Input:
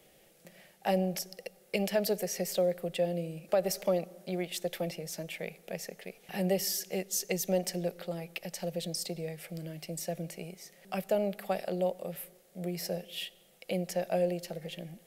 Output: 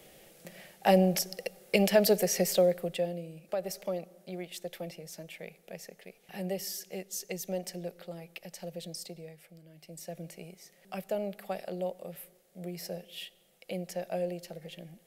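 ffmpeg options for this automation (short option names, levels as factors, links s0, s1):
-af "volume=7.5,afade=t=out:st=2.41:d=0.79:silence=0.266073,afade=t=out:st=8.96:d=0.68:silence=0.316228,afade=t=in:st=9.64:d=0.63:silence=0.266073"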